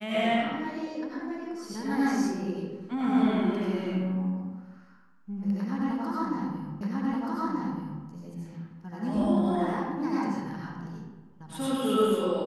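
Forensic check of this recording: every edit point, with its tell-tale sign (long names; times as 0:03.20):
0:06.81: the same again, the last 1.23 s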